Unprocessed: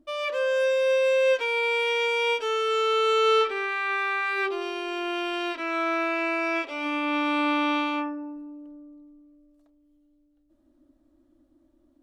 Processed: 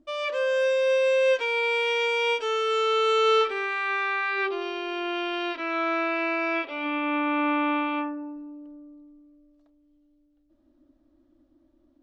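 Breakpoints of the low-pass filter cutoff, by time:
low-pass filter 24 dB per octave
0:03.74 8,300 Hz
0:04.40 5,100 Hz
0:06.40 5,100 Hz
0:07.22 2,700 Hz
0:07.84 2,700 Hz
0:08.35 5,900 Hz

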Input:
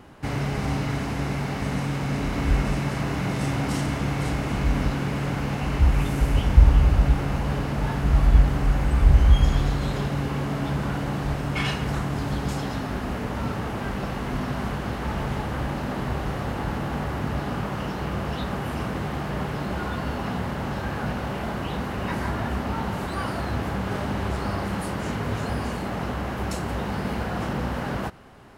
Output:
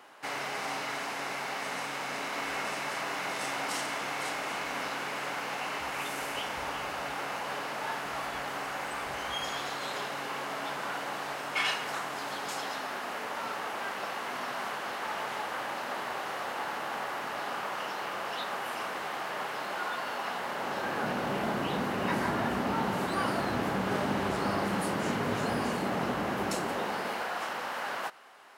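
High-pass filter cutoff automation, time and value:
0:20.34 690 Hz
0:21.36 200 Hz
0:26.37 200 Hz
0:27.39 790 Hz

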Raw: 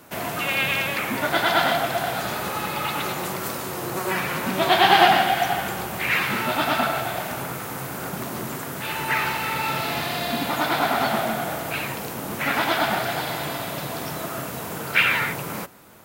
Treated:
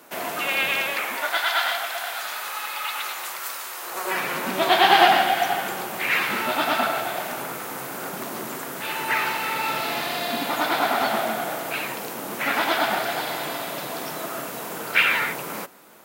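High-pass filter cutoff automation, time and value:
0:00.78 290 Hz
0:01.46 1,100 Hz
0:03.79 1,100 Hz
0:04.27 250 Hz

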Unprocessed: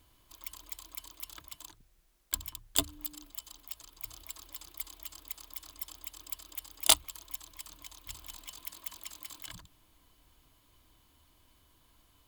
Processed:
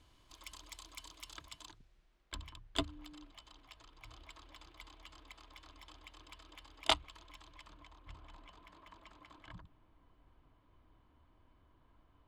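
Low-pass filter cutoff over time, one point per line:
0:01.43 6,400 Hz
0:02.34 2,700 Hz
0:07.49 2,700 Hz
0:07.99 1,500 Hz

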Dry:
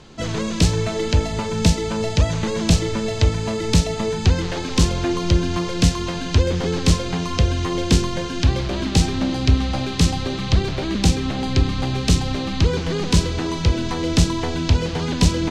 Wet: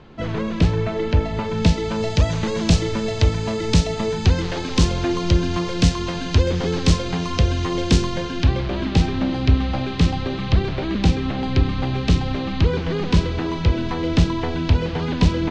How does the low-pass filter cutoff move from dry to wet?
0:01.18 2,500 Hz
0:02.18 6,300 Hz
0:08.08 6,300 Hz
0:08.58 3,300 Hz

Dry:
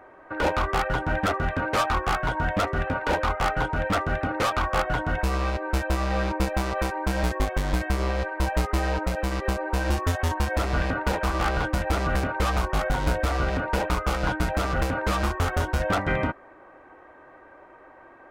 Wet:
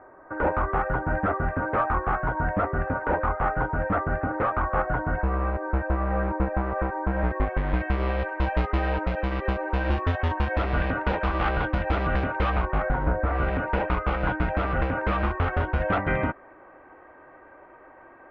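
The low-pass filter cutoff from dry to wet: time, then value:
low-pass filter 24 dB per octave
0:07.06 1,700 Hz
0:08.07 3,200 Hz
0:12.40 3,200 Hz
0:13.18 1,500 Hz
0:13.44 2,700 Hz

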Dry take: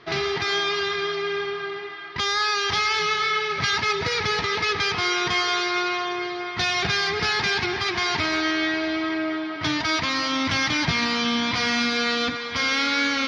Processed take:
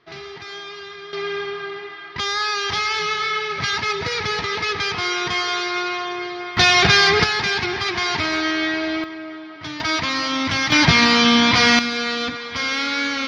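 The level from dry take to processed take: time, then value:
−10.5 dB
from 0:01.13 +0.5 dB
from 0:06.57 +9.5 dB
from 0:07.24 +2 dB
from 0:09.04 −7 dB
from 0:09.80 +2 dB
from 0:10.72 +9 dB
from 0:11.79 0 dB

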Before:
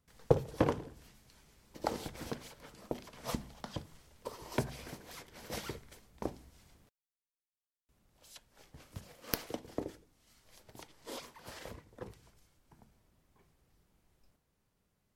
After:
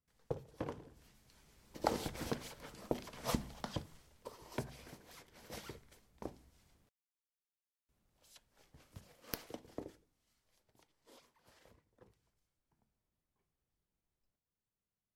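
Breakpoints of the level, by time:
0:00.58 −14 dB
0:00.98 −7 dB
0:01.94 +1.5 dB
0:03.67 +1.5 dB
0:04.34 −7.5 dB
0:09.82 −7.5 dB
0:10.69 −18 dB

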